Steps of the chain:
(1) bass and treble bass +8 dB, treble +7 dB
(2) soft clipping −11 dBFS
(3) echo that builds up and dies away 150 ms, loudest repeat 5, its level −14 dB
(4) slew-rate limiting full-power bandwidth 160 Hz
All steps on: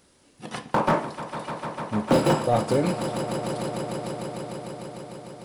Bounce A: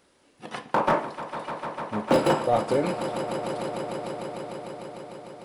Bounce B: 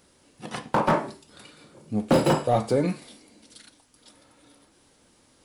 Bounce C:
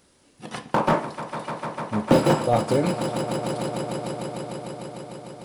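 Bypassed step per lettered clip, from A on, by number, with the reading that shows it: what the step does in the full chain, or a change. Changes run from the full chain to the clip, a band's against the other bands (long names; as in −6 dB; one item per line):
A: 1, 125 Hz band −5.5 dB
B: 3, 8 kHz band −2.0 dB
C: 2, distortion level −15 dB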